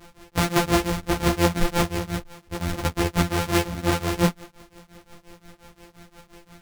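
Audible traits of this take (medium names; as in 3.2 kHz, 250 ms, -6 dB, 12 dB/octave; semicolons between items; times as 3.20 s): a buzz of ramps at a fixed pitch in blocks of 256 samples; tremolo triangle 5.7 Hz, depth 100%; a shimmering, thickened sound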